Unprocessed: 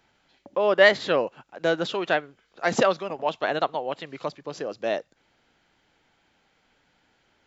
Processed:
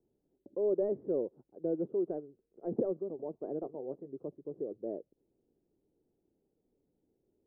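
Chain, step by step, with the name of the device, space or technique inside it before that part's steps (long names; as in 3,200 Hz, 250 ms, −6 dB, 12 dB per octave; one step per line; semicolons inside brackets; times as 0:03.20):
0:03.60–0:04.09: double-tracking delay 15 ms −10 dB
overdriven synthesiser ladder filter (soft clipping −11 dBFS, distortion −15 dB; transistor ladder low-pass 450 Hz, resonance 55%)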